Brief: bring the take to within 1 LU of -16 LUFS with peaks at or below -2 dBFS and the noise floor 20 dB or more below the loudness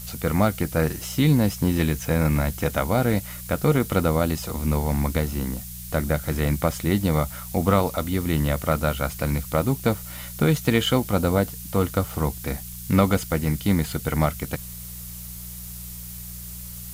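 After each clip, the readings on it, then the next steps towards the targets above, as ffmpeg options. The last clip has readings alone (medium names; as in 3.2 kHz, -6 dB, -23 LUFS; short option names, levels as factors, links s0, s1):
hum 60 Hz; highest harmonic 180 Hz; hum level -37 dBFS; noise floor -37 dBFS; noise floor target -44 dBFS; loudness -23.5 LUFS; peak level -6.0 dBFS; loudness target -16.0 LUFS
-> -af "bandreject=f=60:t=h:w=4,bandreject=f=120:t=h:w=4,bandreject=f=180:t=h:w=4"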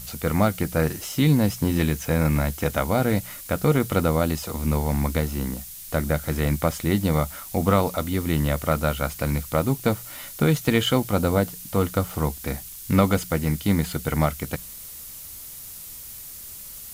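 hum not found; noise floor -40 dBFS; noise floor target -44 dBFS
-> -af "afftdn=nr=6:nf=-40"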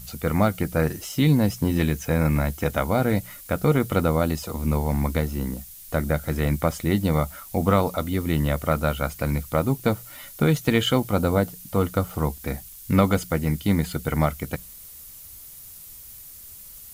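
noise floor -43 dBFS; noise floor target -44 dBFS
-> -af "afftdn=nr=6:nf=-43"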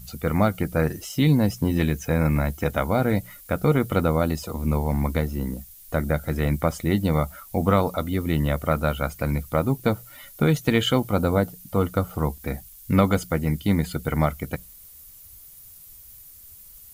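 noise floor -47 dBFS; loudness -24.0 LUFS; peak level -5.5 dBFS; loudness target -16.0 LUFS
-> -af "volume=2.51,alimiter=limit=0.794:level=0:latency=1"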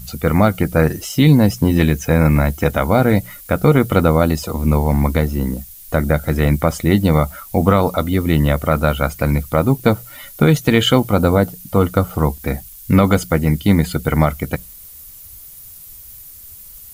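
loudness -16.5 LUFS; peak level -2.0 dBFS; noise floor -39 dBFS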